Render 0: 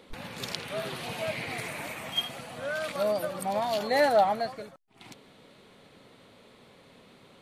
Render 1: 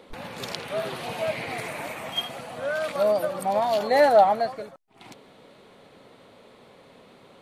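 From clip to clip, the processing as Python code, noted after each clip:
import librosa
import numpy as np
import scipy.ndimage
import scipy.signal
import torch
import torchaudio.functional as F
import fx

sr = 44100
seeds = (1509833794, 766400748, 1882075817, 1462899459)

y = fx.peak_eq(x, sr, hz=660.0, db=6.0, octaves=2.3)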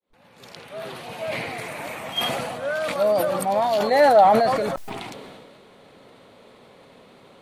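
y = fx.fade_in_head(x, sr, length_s=2.03)
y = fx.sustainer(y, sr, db_per_s=28.0)
y = F.gain(torch.from_numpy(y), 1.5).numpy()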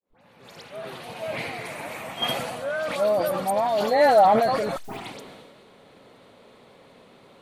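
y = fx.dispersion(x, sr, late='highs', ms=79.0, hz=2700.0)
y = F.gain(torch.from_numpy(y), -2.0).numpy()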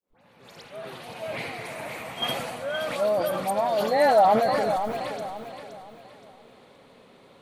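y = fx.echo_feedback(x, sr, ms=521, feedback_pct=35, wet_db=-9.0)
y = F.gain(torch.from_numpy(y), -2.0).numpy()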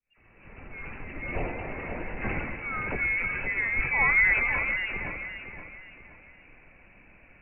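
y = fx.freq_invert(x, sr, carrier_hz=2800)
y = fx.tilt_eq(y, sr, slope=-4.0)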